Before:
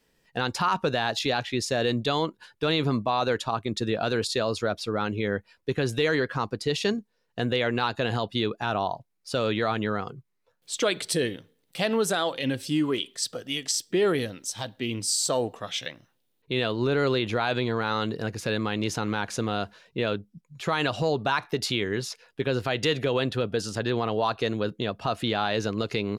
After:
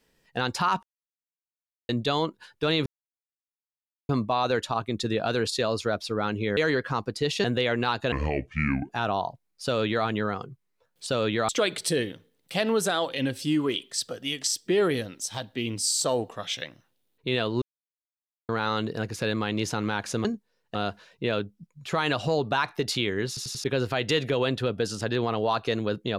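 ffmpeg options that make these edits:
-filter_complex "[0:a]asplit=18[s0][s1][s2][s3][s4][s5][s6][s7][s8][s9][s10][s11][s12][s13][s14][s15][s16][s17];[s0]atrim=end=0.83,asetpts=PTS-STARTPTS,afade=t=out:st=0.826:d=0.004:c=hsin[s18];[s1]atrim=start=0.83:end=1.89,asetpts=PTS-STARTPTS,volume=0[s19];[s2]atrim=start=1.89:end=2.86,asetpts=PTS-STARTPTS,afade=t=in:d=0.004:c=hsin,afade=t=out:st=0.966:d=0.004:c=hsin,apad=pad_dur=1.23[s20];[s3]atrim=start=2.86:end=5.342,asetpts=PTS-STARTPTS,afade=t=in:d=0.004:c=hsin[s21];[s4]atrim=start=6.018:end=6.892[s22];[s5]atrim=start=7.388:end=8.074[s23];[s6]atrim=start=8.07:end=8.56,asetpts=PTS-STARTPTS,asetrate=27783,aresample=44100[s24];[s7]atrim=start=8.556:end=10.732[s25];[s8]atrim=start=9.298:end=9.722[s26];[s9]atrim=start=10.728:end=16.86,asetpts=PTS-STARTPTS,afade=t=out:st=6.128:d=0.004:c=hsin[s27];[s10]atrim=start=16.86:end=17.73,asetpts=PTS-STARTPTS,volume=0[s28];[s11]atrim=start=17.73:end=19.492,asetpts=PTS-STARTPTS,afade=t=in:d=0.004:c=hsin[s29];[s12]atrim=start=6.888:end=7.392[s30];[s13]atrim=start=19.488:end=22.112[s31];[s14]atrim=start=22.018:end=22.112[s32];[s15]atrim=start=22.018:end=22.112[s33];[s16]atrim=start=22.018:end=22.112[s34];[s17]atrim=start=22.378[s35];[s18][s19][s20][s21]concat=n=4:v=0:a=1[s36];[s36][s22]acrossfade=d=0.004:c1=hsin:c2=hsin[s37];[s37][s23]acrossfade=d=0.004:c1=hsin:c2=hsin[s38];[s38][s24]acrossfade=d=0.004:c1=hsin:c2=hsin[s39];[s39][s25]acrossfade=d=0.004:c1=hsin:c2=hsin[s40];[s40][s26]acrossfade=d=0.004:c1=hsin:c2=hsin[s41];[s27][s28][s29]concat=n=3:v=0:a=1[s42];[s41][s42]acrossfade=d=0.004:c1=hsin:c2=hsin[s43];[s43][s30]acrossfade=d=0.004:c1=hsin:c2=hsin[s44];[s44][s31]acrossfade=d=0.004:c1=hsin:c2=hsin[s45];[s45][s32]acrossfade=d=0.004:c1=hsin:c2=hsin[s46];[s46][s33]acrossfade=d=0.004:c1=hsin:c2=hsin[s47];[s47][s34]acrossfade=d=0.004:c1=hsin:c2=hsin[s48];[s48][s35]acrossfade=d=0.004:c1=hsin:c2=hsin"

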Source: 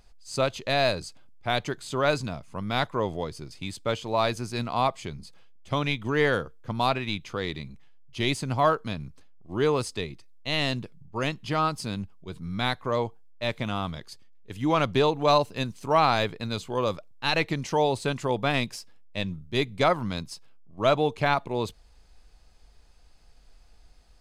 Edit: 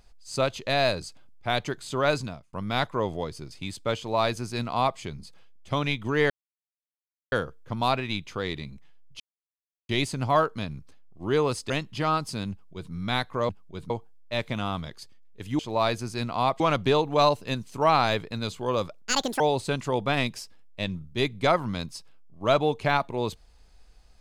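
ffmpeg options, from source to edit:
-filter_complex "[0:a]asplit=11[s0][s1][s2][s3][s4][s5][s6][s7][s8][s9][s10];[s0]atrim=end=2.53,asetpts=PTS-STARTPTS,afade=t=out:st=2.2:d=0.33[s11];[s1]atrim=start=2.53:end=6.3,asetpts=PTS-STARTPTS,afade=t=in:d=0.004:c=hsin,afade=t=out:st=3.766:d=0.004:c=hsin,apad=pad_dur=1.02[s12];[s2]atrim=start=6.3:end=8.18,asetpts=PTS-STARTPTS,afade=t=in:d=0.004:c=hsin,afade=t=out:st=1.876:d=0.004:c=hsin,apad=pad_dur=0.69[s13];[s3]atrim=start=8.18:end=9.992,asetpts=PTS-STARTPTS,afade=t=in:d=0.004:c=hsin[s14];[s4]atrim=start=11.208:end=13.002[s15];[s5]atrim=start=12.018:end=12.432[s16];[s6]atrim=start=12.998:end=14.692[s17];[s7]atrim=start=3.968:end=4.982[s18];[s8]atrim=start=14.688:end=17.104[s19];[s9]atrim=start=17.1:end=17.77,asetpts=PTS-STARTPTS,asetrate=75411,aresample=44100[s20];[s10]atrim=start=17.766[s21];[s11][s12][s13][s14]concat=n=4:v=0:a=1[s22];[s22][s15]acrossfade=d=0.004:c1=hsin:c2=hsin[s23];[s23][s16]acrossfade=d=0.004:c1=hsin:c2=hsin[s24];[s24][s17]acrossfade=d=0.004:c1=hsin:c2=hsin[s25];[s25][s18]acrossfade=d=0.004:c1=hsin:c2=hsin[s26];[s26][s19]acrossfade=d=0.004:c1=hsin:c2=hsin[s27];[s27][s20]acrossfade=d=0.004:c1=hsin:c2=hsin[s28];[s28][s21]acrossfade=d=0.004:c1=hsin:c2=hsin"

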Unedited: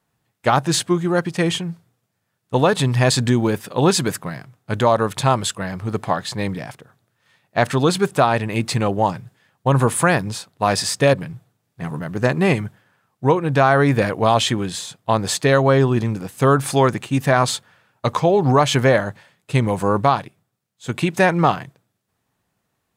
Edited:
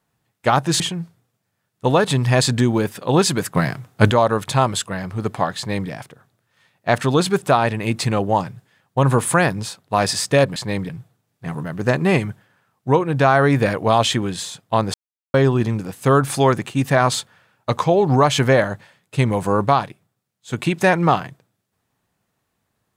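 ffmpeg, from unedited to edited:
-filter_complex "[0:a]asplit=8[s0][s1][s2][s3][s4][s5][s6][s7];[s0]atrim=end=0.802[s8];[s1]atrim=start=1.488:end=4.242[s9];[s2]atrim=start=4.238:end=4.802,asetpts=PTS-STARTPTS,volume=3.35[s10];[s3]atrim=start=4.798:end=11.252[s11];[s4]atrim=start=6.258:end=6.592[s12];[s5]atrim=start=11.248:end=15.3,asetpts=PTS-STARTPTS,afade=t=out:st=4.048:d=0.004:c=hsin[s13];[s6]atrim=start=15.3:end=15.7,asetpts=PTS-STARTPTS,volume=0[s14];[s7]atrim=start=15.7,asetpts=PTS-STARTPTS,afade=t=in:d=0.004:c=hsin[s15];[s8][s9]acrossfade=d=0.004:c1=hsin:c2=hsin[s16];[s16][s10]acrossfade=d=0.004:c1=hsin:c2=hsin[s17];[s17][s11]acrossfade=d=0.004:c1=hsin:c2=hsin[s18];[s18][s12]acrossfade=d=0.004:c1=hsin:c2=hsin[s19];[s13][s14][s15]concat=n=3:v=0:a=1[s20];[s19][s20]acrossfade=d=0.004:c1=hsin:c2=hsin"

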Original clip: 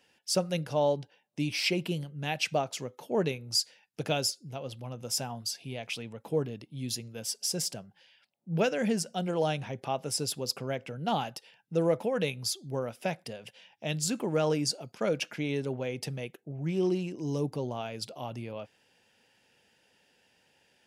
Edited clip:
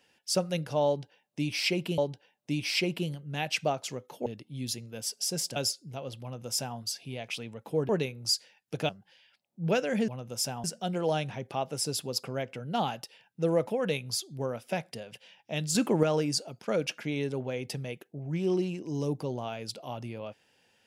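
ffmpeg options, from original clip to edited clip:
-filter_complex "[0:a]asplit=10[s0][s1][s2][s3][s4][s5][s6][s7][s8][s9];[s0]atrim=end=1.982[s10];[s1]atrim=start=0.868:end=3.152[s11];[s2]atrim=start=6.478:end=7.782[s12];[s3]atrim=start=4.148:end=6.482[s13];[s4]atrim=start=3.148:end=4.152[s14];[s5]atrim=start=7.778:end=8.972[s15];[s6]atrim=start=4.808:end=5.372[s16];[s7]atrim=start=8.968:end=14.082[s17];[s8]atrim=start=14.078:end=14.362,asetpts=PTS-STARTPTS,volume=2[s18];[s9]atrim=start=14.358[s19];[s10][s11]acrossfade=d=0.004:c1=hsin:c2=hsin[s20];[s20][s12]acrossfade=d=0.004:c1=hsin:c2=hsin[s21];[s21][s13]acrossfade=d=0.004:c1=hsin:c2=hsin[s22];[s22][s14]acrossfade=d=0.004:c1=hsin:c2=hsin[s23];[s23][s15]acrossfade=d=0.004:c1=hsin:c2=hsin[s24];[s24][s16]acrossfade=d=0.004:c1=hsin:c2=hsin[s25];[s25][s17]acrossfade=d=0.004:c1=hsin:c2=hsin[s26];[s26][s18]acrossfade=d=0.004:c1=hsin:c2=hsin[s27];[s27][s19]acrossfade=d=0.004:c1=hsin:c2=hsin"

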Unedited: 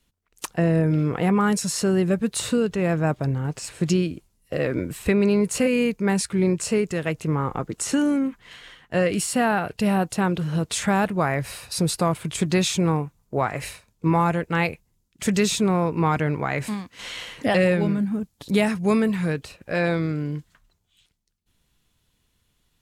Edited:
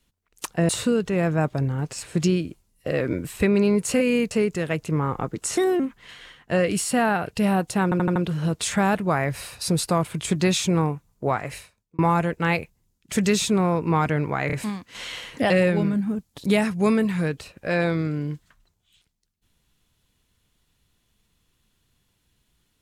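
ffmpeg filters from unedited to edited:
-filter_complex "[0:a]asplit=12[s0][s1][s2][s3][s4][s5][s6][s7][s8][s9][s10][s11];[s0]atrim=end=0.692[s12];[s1]atrim=start=2.348:end=5.972[s13];[s2]atrim=start=6.668:end=7.934[s14];[s3]atrim=start=7.93:end=8.22,asetpts=PTS-STARTPTS,asetrate=56448,aresample=44100,atrim=end_sample=9991,asetpts=PTS-STARTPTS[s15];[s4]atrim=start=8.216:end=10.342[s16];[s5]atrim=start=10.258:end=10.342[s17];[s6]atrim=start=10.258:end=10.342[s18];[s7]atrim=start=10.258:end=10.342[s19];[s8]atrim=start=10.258:end=14.09,asetpts=PTS-STARTPTS,afade=t=out:st=3.132:d=0.7[s20];[s9]atrim=start=14.09:end=16.602,asetpts=PTS-STARTPTS,afade=t=in:d=0.004:c=hsin[s21];[s10]atrim=start=16.568:end=16.602[s22];[s11]atrim=start=16.568[s23];[s12][s13]acrossfade=d=0.004:c1=hsin:c2=hsin[s24];[s24][s14]acrossfade=d=0.004:c1=hsin:c2=hsin[s25];[s25][s15]acrossfade=d=0.004:c1=hsin:c2=hsin[s26];[s26][s16]acrossfade=d=0.004:c1=hsin:c2=hsin[s27];[s27][s17]acrossfade=d=0.004:c1=hsin:c2=hsin[s28];[s28][s18]acrossfade=d=0.004:c1=hsin:c2=hsin[s29];[s29][s19]acrossfade=d=0.004:c1=hsin:c2=hsin[s30];[s20][s21]concat=n=2:v=0:a=1[s31];[s30][s31]acrossfade=d=0.004:c1=hsin:c2=hsin[s32];[s32][s22]acrossfade=d=0.004:c1=hsin:c2=hsin[s33];[s33][s23]acrossfade=d=0.004:c1=hsin:c2=hsin"

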